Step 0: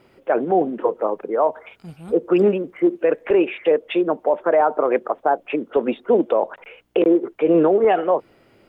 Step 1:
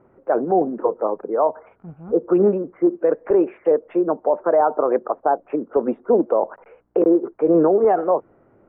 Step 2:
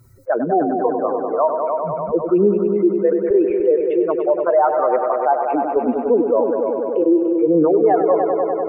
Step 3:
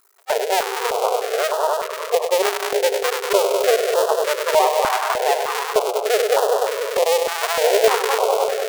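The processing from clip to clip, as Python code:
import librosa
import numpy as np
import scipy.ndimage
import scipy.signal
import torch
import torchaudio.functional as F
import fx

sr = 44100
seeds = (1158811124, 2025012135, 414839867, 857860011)

y1 = scipy.signal.sosfilt(scipy.signal.butter(4, 1400.0, 'lowpass', fs=sr, output='sos'), x)
y2 = fx.bin_expand(y1, sr, power=2.0)
y2 = fx.echo_heads(y2, sr, ms=98, heads='all three', feedback_pct=60, wet_db=-13.0)
y2 = fx.env_flatten(y2, sr, amount_pct=50)
y2 = F.gain(torch.from_numpy(y2), 2.0).numpy()
y3 = fx.cycle_switch(y2, sr, every=2, mode='muted')
y3 = fx.brickwall_highpass(y3, sr, low_hz=390.0)
y3 = fx.filter_held_notch(y3, sr, hz=3.3, low_hz=510.0, high_hz=2200.0)
y3 = F.gain(torch.from_numpy(y3), 5.5).numpy()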